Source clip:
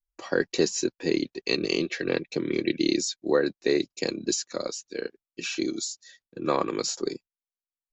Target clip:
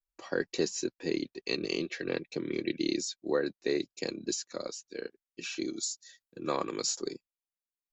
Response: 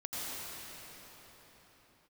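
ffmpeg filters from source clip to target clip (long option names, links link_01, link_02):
-filter_complex "[0:a]asettb=1/sr,asplit=3[link_01][link_02][link_03];[link_01]atrim=end=5.834[link_04];[link_02]atrim=start=5.83:end=7.08,asetpts=PTS-STARTPTS,afade=type=in:duration=0.004:curve=qsin,afade=type=out:start_time=1.246:duration=0.004:curve=qsin,aemphasis=mode=production:type=cd[link_05];[link_03]atrim=start=7.076[link_06];[link_04][link_05]acrossfade=duration=0.004:curve1=hsin:curve2=qsin[link_07];[link_07][link_06]acrossfade=duration=0.004:curve1=qsin:curve2=hsin,volume=-6.5dB"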